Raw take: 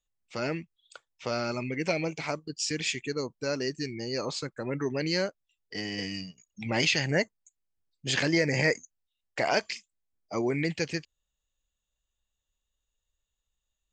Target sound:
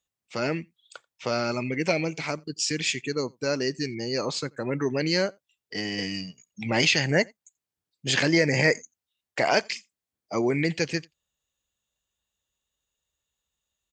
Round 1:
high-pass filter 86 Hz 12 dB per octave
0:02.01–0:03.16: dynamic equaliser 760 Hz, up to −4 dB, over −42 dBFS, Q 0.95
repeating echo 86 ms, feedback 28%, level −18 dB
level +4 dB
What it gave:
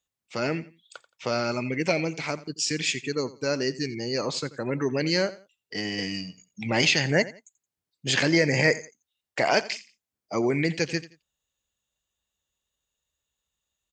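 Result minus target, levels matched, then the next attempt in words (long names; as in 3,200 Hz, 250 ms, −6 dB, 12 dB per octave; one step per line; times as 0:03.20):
echo-to-direct +12 dB
high-pass filter 86 Hz 12 dB per octave
0:02.01–0:03.16: dynamic equaliser 760 Hz, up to −4 dB, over −42 dBFS, Q 0.95
repeating echo 86 ms, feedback 28%, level −29.5 dB
level +4 dB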